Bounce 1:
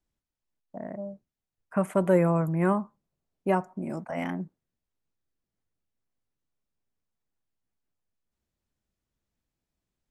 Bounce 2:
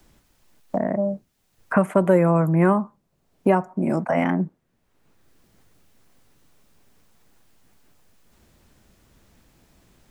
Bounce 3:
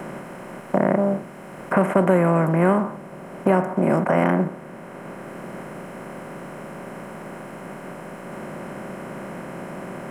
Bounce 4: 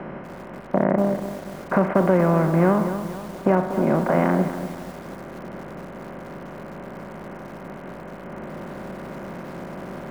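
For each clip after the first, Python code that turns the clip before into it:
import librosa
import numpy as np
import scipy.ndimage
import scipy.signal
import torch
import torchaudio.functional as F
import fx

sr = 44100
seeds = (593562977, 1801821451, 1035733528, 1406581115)

y1 = fx.band_squash(x, sr, depth_pct=70)
y1 = y1 * 10.0 ** (7.5 / 20.0)
y2 = fx.bin_compress(y1, sr, power=0.4)
y2 = y2 * 10.0 ** (-3.5 / 20.0)
y3 = fx.air_absorb(y2, sr, metres=320.0)
y3 = fx.add_hum(y3, sr, base_hz=50, snr_db=29)
y3 = fx.echo_crushed(y3, sr, ms=240, feedback_pct=55, bits=6, wet_db=-10)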